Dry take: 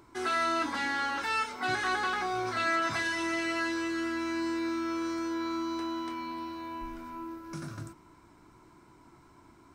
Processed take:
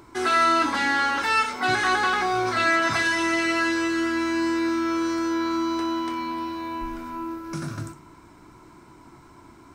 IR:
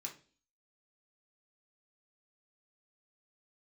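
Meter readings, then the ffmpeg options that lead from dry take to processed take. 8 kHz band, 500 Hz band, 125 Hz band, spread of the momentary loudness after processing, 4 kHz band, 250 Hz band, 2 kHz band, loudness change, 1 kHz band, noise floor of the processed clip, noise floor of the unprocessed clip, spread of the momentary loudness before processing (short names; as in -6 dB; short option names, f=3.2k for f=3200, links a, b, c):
+8.5 dB, +8.0 dB, +8.0 dB, 13 LU, +8.0 dB, +8.0 dB, +8.5 dB, +8.5 dB, +8.5 dB, -50 dBFS, -58 dBFS, 13 LU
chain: -filter_complex "[0:a]asplit=2[a][b];[1:a]atrim=start_sample=2205,adelay=61[c];[b][c]afir=irnorm=-1:irlink=0,volume=-11dB[d];[a][d]amix=inputs=2:normalize=0,volume=8dB"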